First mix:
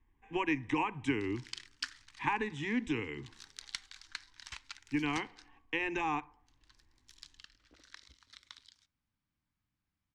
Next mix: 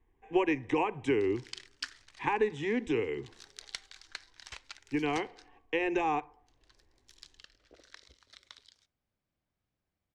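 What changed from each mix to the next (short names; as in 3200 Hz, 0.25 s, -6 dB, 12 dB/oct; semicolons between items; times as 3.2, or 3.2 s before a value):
master: add band shelf 520 Hz +11.5 dB 1.2 oct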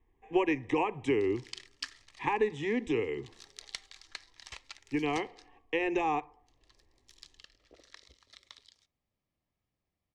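master: add Butterworth band-stop 1500 Hz, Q 6.6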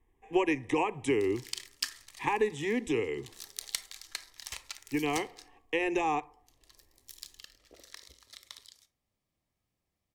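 background: send +11.0 dB; master: remove air absorption 110 m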